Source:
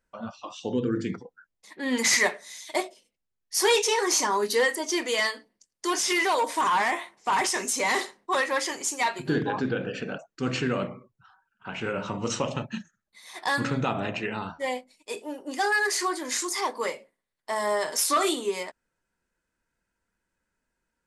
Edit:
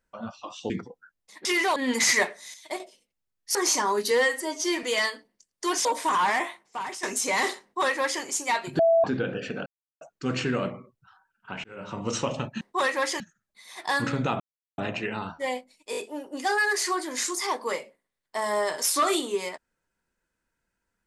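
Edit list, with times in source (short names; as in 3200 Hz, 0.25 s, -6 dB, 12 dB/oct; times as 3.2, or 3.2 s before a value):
0.7–1.05 cut
2.58–2.84 gain -6.5 dB
3.59–4 cut
4.56–5.04 stretch 1.5×
6.06–6.37 move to 1.8
6.97–7.55 fade out quadratic, to -12 dB
8.15–8.74 copy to 12.78
9.31–9.56 bleep 663 Hz -16 dBFS
10.18 insert silence 0.35 s
11.81–12.24 fade in
13.98 insert silence 0.38 s
15.11 stutter 0.02 s, 4 plays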